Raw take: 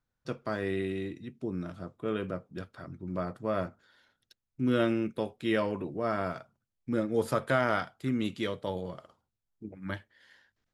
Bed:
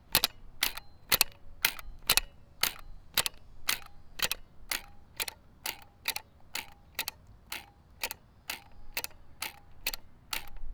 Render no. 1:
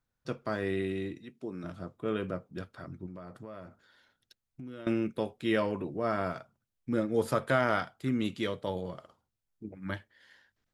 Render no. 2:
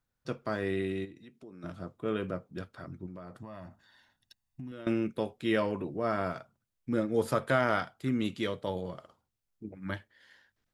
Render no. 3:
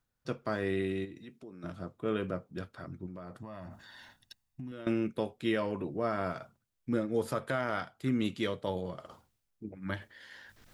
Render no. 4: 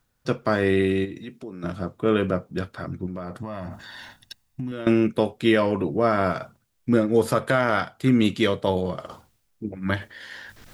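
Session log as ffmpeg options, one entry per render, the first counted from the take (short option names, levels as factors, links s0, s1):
-filter_complex "[0:a]asettb=1/sr,asplit=3[s0][s1][s2];[s0]atrim=end=1.194[s3];[s1]atrim=start=1.19:end=1.64,asetpts=PTS-STARTPTS,afade=t=in:d=0.004:c=qsin,afade=t=out:st=0.446:d=0.004:c=qsin,highpass=f=380:p=1[s4];[s2]atrim=start=1.636[s5];[s3][s4]acrossfade=d=0.004:c1=hsin:c2=qsin[s6];[s6][s5]acrossfade=d=0.004:c1=qsin:c2=hsin,asettb=1/sr,asplit=3[s7][s8][s9];[s7]atrim=end=3.064[s10];[s8]atrim=start=3.06:end=4.87,asetpts=PTS-STARTPTS,afade=t=in:d=0.004:c=qsin,afade=t=out:st=1.806:d=0.004:c=qsin,acompressor=threshold=0.01:ratio=10:attack=3.2:release=140:knee=1:detection=peak[s11];[s9]atrim=start=4.866[s12];[s10][s11]acrossfade=d=0.004:c1=hsin:c2=qsin[s13];[s13][s12]acrossfade=d=0.004:c1=qsin:c2=hsin"
-filter_complex "[0:a]asplit=3[s0][s1][s2];[s0]afade=t=out:st=1.04:d=0.02[s3];[s1]acompressor=threshold=0.00316:ratio=2.5:attack=3.2:release=140:knee=1:detection=peak,afade=t=in:st=1.04:d=0.02,afade=t=out:st=1.62:d=0.02[s4];[s2]afade=t=in:st=1.62:d=0.02[s5];[s3][s4][s5]amix=inputs=3:normalize=0,asettb=1/sr,asplit=3[s6][s7][s8];[s6]atrim=end=3.414[s9];[s7]atrim=start=3.41:end=4.72,asetpts=PTS-STARTPTS,afade=t=in:d=0.004:c=qsin,afade=t=out:st=1.306:d=0.004:c=qsin,aecho=1:1:1.1:0.65,atrim=end_sample=57771[s10];[s8]atrim=start=4.716[s11];[s9][s10]acrossfade=d=0.004:c1=hsin:c2=qsin[s12];[s12][s11]acrossfade=d=0.004:c1=qsin:c2=hsin"
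-af "areverse,acompressor=mode=upward:threshold=0.00794:ratio=2.5,areverse,alimiter=limit=0.106:level=0:latency=1:release=280"
-af "volume=3.76"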